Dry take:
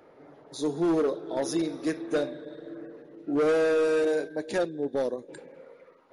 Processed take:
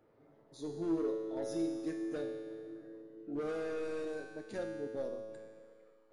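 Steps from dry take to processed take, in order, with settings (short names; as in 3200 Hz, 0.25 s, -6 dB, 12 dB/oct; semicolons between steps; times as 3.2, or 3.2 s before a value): low shelf 250 Hz +11.5 dB; resonator 110 Hz, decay 1.9 s, mix 90%; gain +1 dB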